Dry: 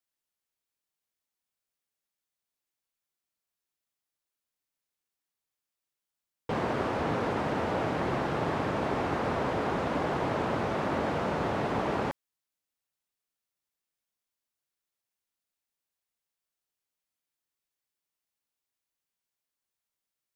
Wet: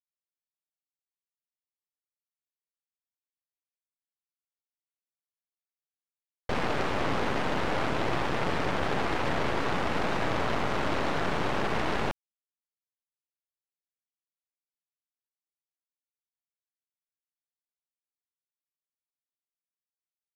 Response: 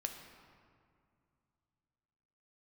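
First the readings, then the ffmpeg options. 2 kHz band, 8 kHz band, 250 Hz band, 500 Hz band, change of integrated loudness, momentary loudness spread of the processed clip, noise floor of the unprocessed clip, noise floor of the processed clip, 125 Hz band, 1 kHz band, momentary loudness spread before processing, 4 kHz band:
+4.0 dB, +5.5 dB, −1.0 dB, −1.0 dB, +0.5 dB, 1 LU, below −85 dBFS, below −85 dBFS, −0.5 dB, +0.5 dB, 1 LU, +6.5 dB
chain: -af "aeval=exprs='val(0)*gte(abs(val(0)),0.002)':channel_layout=same,aeval=exprs='0.168*(cos(1*acos(clip(val(0)/0.168,-1,1)))-cos(1*PI/2))+0.0531*(cos(8*acos(clip(val(0)/0.168,-1,1)))-cos(8*PI/2))':channel_layout=same,volume=-3dB"

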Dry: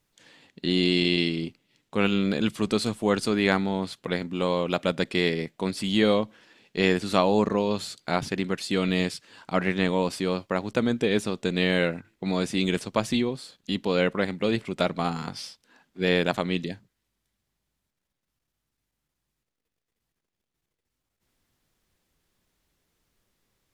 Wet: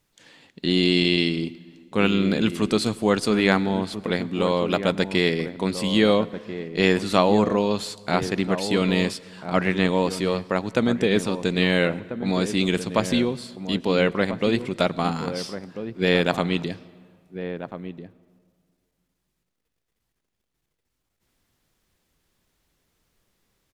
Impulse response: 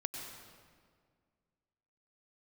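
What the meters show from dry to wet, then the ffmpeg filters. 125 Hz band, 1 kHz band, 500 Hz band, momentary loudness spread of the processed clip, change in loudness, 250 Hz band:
+3.5 dB, +3.5 dB, +3.5 dB, 13 LU, +3.0 dB, +3.5 dB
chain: -filter_complex "[0:a]asplit=2[link_01][link_02];[link_02]adelay=1341,volume=-10dB,highshelf=frequency=4000:gain=-30.2[link_03];[link_01][link_03]amix=inputs=2:normalize=0,asplit=2[link_04][link_05];[1:a]atrim=start_sample=2205[link_06];[link_05][link_06]afir=irnorm=-1:irlink=0,volume=-16.5dB[link_07];[link_04][link_07]amix=inputs=2:normalize=0,volume=2dB"

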